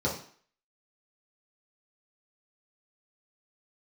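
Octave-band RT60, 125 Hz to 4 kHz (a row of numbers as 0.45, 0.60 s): 0.40, 0.45, 0.45, 0.55, 0.55, 0.50 s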